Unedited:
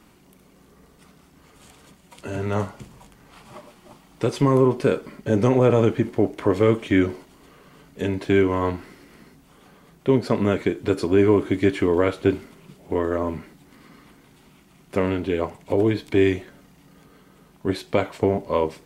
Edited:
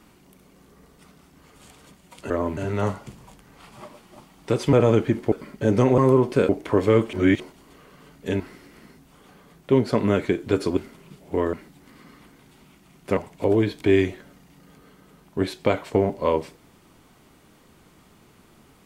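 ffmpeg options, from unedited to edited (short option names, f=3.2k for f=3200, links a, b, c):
-filter_complex "[0:a]asplit=13[a][b][c][d][e][f][g][h][i][j][k][l][m];[a]atrim=end=2.302[n];[b]atrim=start=13.108:end=13.382[o];[c]atrim=start=2.298:end=4.462[p];[d]atrim=start=5.628:end=6.222[q];[e]atrim=start=4.968:end=5.632[r];[f]atrim=start=4.458:end=4.972[s];[g]atrim=start=6.218:end=6.862[t];[h]atrim=start=6.858:end=7.132,asetpts=PTS-STARTPTS,areverse[u];[i]atrim=start=7.128:end=8.132[v];[j]atrim=start=8.768:end=11.142[w];[k]atrim=start=12.348:end=13.112[x];[l]atrim=start=13.378:end=15.022[y];[m]atrim=start=15.448[z];[n][o]acrossfade=d=0.004:c1=hsin:c2=hsin[aa];[aa][p]acrossfade=d=0.004:c1=hsin:c2=hsin[ab];[ab][q]acrossfade=d=0.004:c1=hsin:c2=hsin[ac];[ac][r]acrossfade=d=0.004:c1=hsin:c2=hsin[ad];[ad][s]acrossfade=d=0.004:c1=hsin:c2=hsin[ae];[ae][t]acrossfade=d=0.004:c1=hsin:c2=hsin[af];[af][u]acrossfade=d=0.004:c1=hsin:c2=hsin[ag];[ag][v]acrossfade=d=0.004:c1=hsin:c2=hsin[ah];[ah][w]acrossfade=d=0.004:c1=hsin:c2=hsin[ai];[ai][x]acrossfade=d=0.004:c1=hsin:c2=hsin[aj];[aj][y]acrossfade=d=0.004:c1=hsin:c2=hsin[ak];[ak][z]acrossfade=d=0.004:c1=hsin:c2=hsin"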